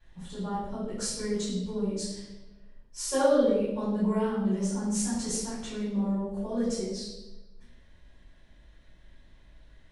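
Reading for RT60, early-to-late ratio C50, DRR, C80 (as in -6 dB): 1.1 s, 0.5 dB, -13.5 dB, 3.5 dB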